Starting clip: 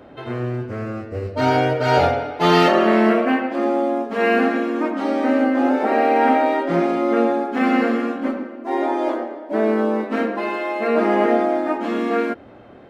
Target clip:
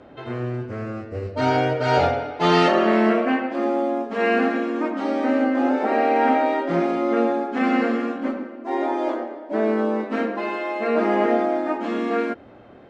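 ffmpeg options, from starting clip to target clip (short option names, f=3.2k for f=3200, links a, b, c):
-af "lowpass=f=8.3k:w=0.5412,lowpass=f=8.3k:w=1.3066,volume=-2.5dB"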